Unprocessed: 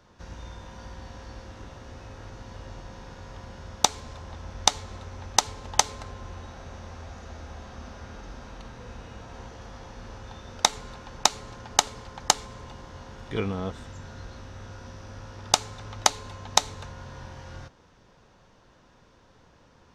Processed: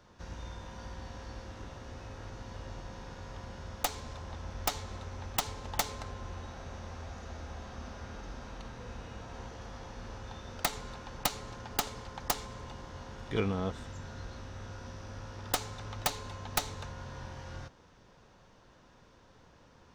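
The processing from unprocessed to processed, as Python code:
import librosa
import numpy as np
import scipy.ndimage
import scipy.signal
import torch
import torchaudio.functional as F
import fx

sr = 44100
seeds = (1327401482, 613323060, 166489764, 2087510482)

y = fx.tracing_dist(x, sr, depth_ms=0.27)
y = 10.0 ** (-15.5 / 20.0) * (np.abs((y / 10.0 ** (-15.5 / 20.0) + 3.0) % 4.0 - 2.0) - 1.0)
y = y * librosa.db_to_amplitude(-2.0)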